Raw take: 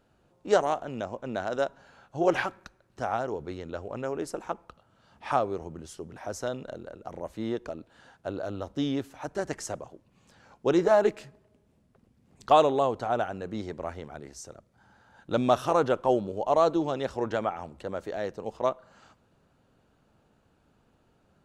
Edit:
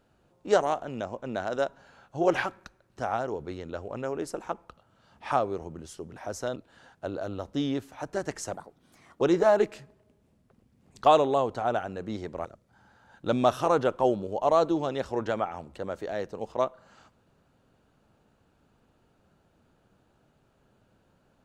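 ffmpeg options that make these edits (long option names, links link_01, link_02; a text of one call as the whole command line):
ffmpeg -i in.wav -filter_complex "[0:a]asplit=5[link_01][link_02][link_03][link_04][link_05];[link_01]atrim=end=6.562[link_06];[link_02]atrim=start=7.778:end=9.764[link_07];[link_03]atrim=start=9.76:end=10.66,asetpts=PTS-STARTPTS,asetrate=59094,aresample=44100,atrim=end_sample=29619,asetpts=PTS-STARTPTS[link_08];[link_04]atrim=start=10.656:end=13.902[link_09];[link_05]atrim=start=14.498[link_10];[link_06][link_07]acrossfade=duration=0.004:curve1=hsin:curve2=hsin[link_11];[link_11][link_08]acrossfade=duration=0.004:curve1=hsin:curve2=hsin[link_12];[link_12][link_09]acrossfade=duration=0.004:curve1=hsin:curve2=hsin[link_13];[link_13][link_10]acrossfade=duration=0.004:curve1=hsin:curve2=hsin" out.wav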